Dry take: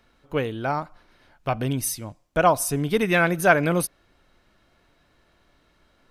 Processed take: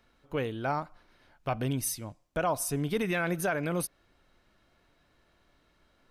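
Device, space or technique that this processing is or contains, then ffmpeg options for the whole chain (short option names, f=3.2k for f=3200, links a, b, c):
stacked limiters: -af "alimiter=limit=-9dB:level=0:latency=1:release=491,alimiter=limit=-14.5dB:level=0:latency=1:release=29,volume=-5dB"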